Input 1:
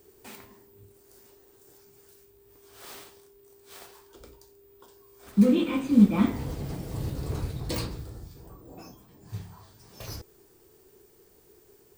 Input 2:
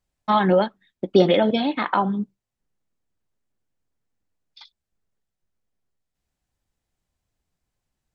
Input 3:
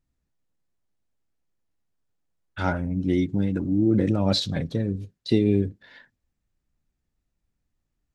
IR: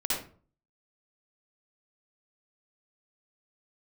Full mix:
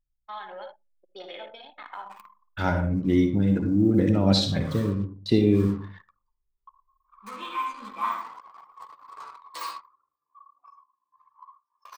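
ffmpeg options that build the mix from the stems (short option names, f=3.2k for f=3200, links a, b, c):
-filter_complex "[0:a]highpass=f=1.1k:t=q:w=7.6,flanger=delay=8.5:depth=5.3:regen=-1:speed=0.17:shape=sinusoidal,adelay=1850,volume=-4.5dB,asplit=2[a][b];[b]volume=-8.5dB[c];[1:a]highpass=860,volume=-19dB,asplit=2[d][e];[e]volume=-7dB[f];[2:a]volume=-2dB,asplit=2[g][h];[h]volume=-10.5dB[i];[3:a]atrim=start_sample=2205[j];[c][f][i]amix=inputs=3:normalize=0[k];[k][j]afir=irnorm=-1:irlink=0[l];[a][d][g][l]amix=inputs=4:normalize=0,anlmdn=0.1"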